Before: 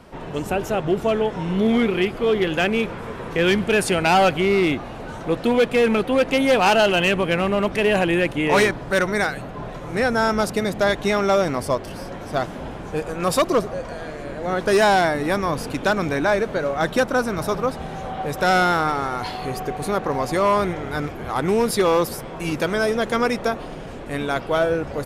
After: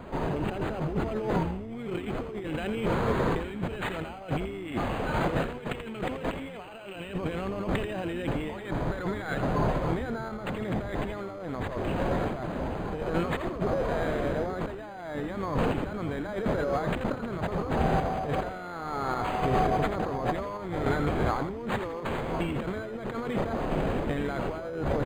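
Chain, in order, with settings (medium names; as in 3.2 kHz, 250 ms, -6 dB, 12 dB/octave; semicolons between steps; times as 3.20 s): 4.68–6.96 s: treble shelf 2.5 kHz +10.5 dB; compressor with a negative ratio -29 dBFS, ratio -1; random-step tremolo; frequency-shifting echo 84 ms, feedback 30%, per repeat -94 Hz, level -8.5 dB; decimation joined by straight lines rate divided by 8×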